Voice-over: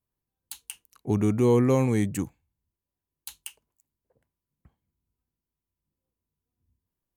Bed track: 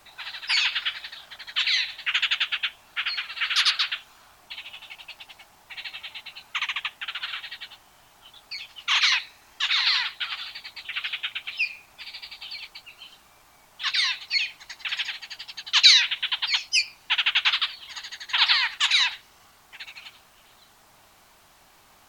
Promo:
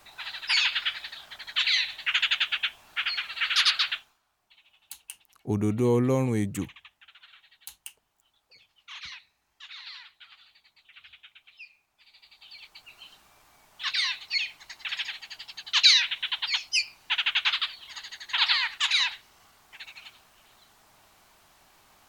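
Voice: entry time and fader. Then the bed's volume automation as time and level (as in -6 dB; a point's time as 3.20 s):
4.40 s, -2.5 dB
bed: 3.94 s -1 dB
4.21 s -21 dB
11.94 s -21 dB
12.92 s -3.5 dB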